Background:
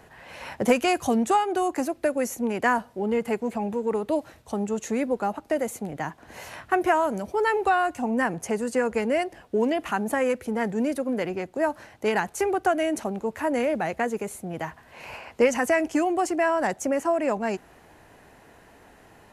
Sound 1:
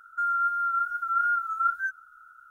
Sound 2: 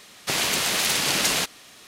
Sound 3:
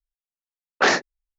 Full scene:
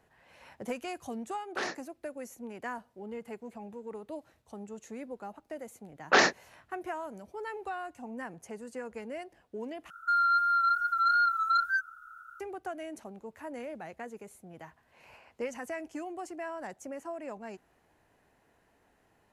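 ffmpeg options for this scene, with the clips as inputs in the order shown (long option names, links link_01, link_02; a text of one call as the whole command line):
ffmpeg -i bed.wav -i cue0.wav -i cue1.wav -i cue2.wav -filter_complex "[3:a]asplit=2[link_01][link_02];[0:a]volume=-16dB[link_03];[1:a]aeval=exprs='0.168*sin(PI/2*1.58*val(0)/0.168)':channel_layout=same[link_04];[link_03]asplit=2[link_05][link_06];[link_05]atrim=end=9.904[link_07];[link_04]atrim=end=2.5,asetpts=PTS-STARTPTS,volume=-6dB[link_08];[link_06]atrim=start=12.396[link_09];[link_01]atrim=end=1.38,asetpts=PTS-STARTPTS,volume=-17dB,afade=type=in:duration=0.004:curve=hsin,afade=type=out:start_time=1.376:duration=0.004:curve=hsin,adelay=750[link_10];[link_02]atrim=end=1.38,asetpts=PTS-STARTPTS,volume=-4dB,afade=type=in:duration=0.004:curve=hsin,afade=type=out:start_time=1.376:duration=0.004:curve=hsin,adelay=5310[link_11];[link_07][link_08]acrossfade=duration=0.004:curve1=hsin:curve2=hsin[link_12];[link_12][link_09]acrossfade=duration=0.004:curve1=hsin:curve2=hsin[link_13];[link_13][link_10][link_11]amix=inputs=3:normalize=0" out.wav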